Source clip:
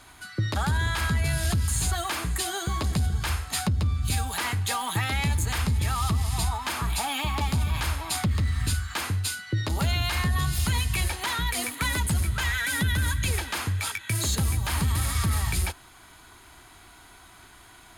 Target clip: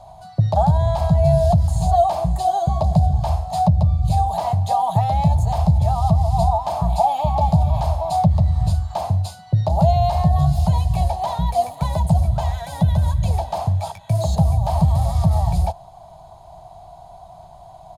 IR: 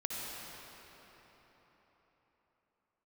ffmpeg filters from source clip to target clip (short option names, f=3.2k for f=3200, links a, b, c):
-af "firequalizer=gain_entry='entry(100,0);entry(160,7);entry(260,-19);entry(450,-10);entry(660,15);entry(1400,-24);entry(2100,-24);entry(4100,-13);entry(9800,-20)':delay=0.05:min_phase=1,volume=8dB"